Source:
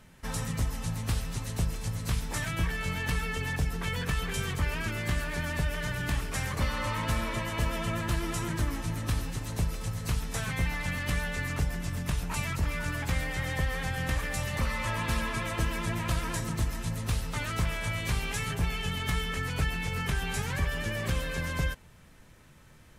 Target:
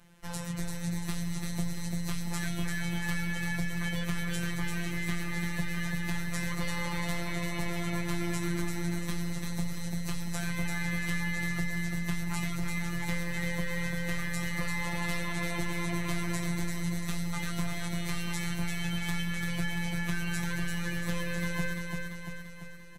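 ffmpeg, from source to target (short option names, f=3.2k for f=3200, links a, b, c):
-filter_complex "[0:a]afftfilt=real='hypot(re,im)*cos(PI*b)':imag='0':win_size=1024:overlap=0.75,asplit=2[a][b];[b]aecho=0:1:342|684|1026|1368|1710|2052|2394|2736:0.631|0.36|0.205|0.117|0.0666|0.038|0.0216|0.0123[c];[a][c]amix=inputs=2:normalize=0"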